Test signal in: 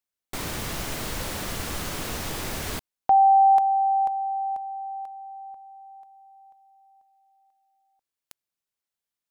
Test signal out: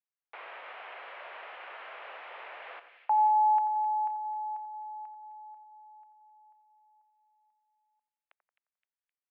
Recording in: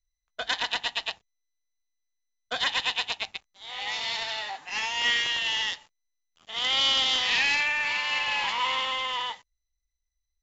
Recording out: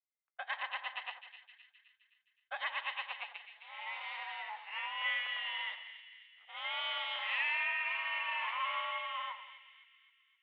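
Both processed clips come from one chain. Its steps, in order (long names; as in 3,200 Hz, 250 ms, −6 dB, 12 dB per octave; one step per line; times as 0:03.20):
echo with a time of its own for lows and highs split 1,700 Hz, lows 88 ms, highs 260 ms, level −10.5 dB
single-sideband voice off tune +75 Hz 500–2,700 Hz
level −8 dB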